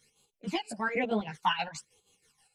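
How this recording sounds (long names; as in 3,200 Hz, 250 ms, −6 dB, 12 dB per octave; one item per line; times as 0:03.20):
phaser sweep stages 12, 1.1 Hz, lowest notch 340–1,900 Hz
chopped level 6.3 Hz, depth 60%, duty 55%
a shimmering, thickened sound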